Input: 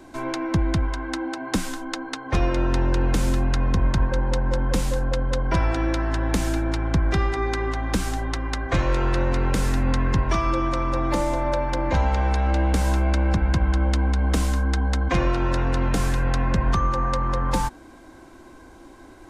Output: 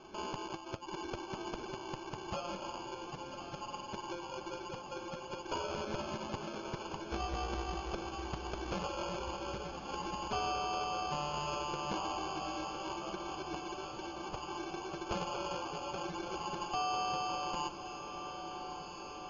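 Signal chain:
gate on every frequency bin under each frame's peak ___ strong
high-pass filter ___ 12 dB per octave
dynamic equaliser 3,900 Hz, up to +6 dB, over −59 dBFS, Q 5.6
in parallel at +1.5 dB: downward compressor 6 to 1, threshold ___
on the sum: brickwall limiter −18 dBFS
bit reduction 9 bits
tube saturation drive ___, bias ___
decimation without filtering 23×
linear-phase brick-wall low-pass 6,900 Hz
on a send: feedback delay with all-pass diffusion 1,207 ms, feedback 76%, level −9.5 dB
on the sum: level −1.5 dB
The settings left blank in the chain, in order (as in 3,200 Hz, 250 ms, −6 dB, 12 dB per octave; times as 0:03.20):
−25 dB, 1,400 Hz, −49 dBFS, 28 dB, 0.4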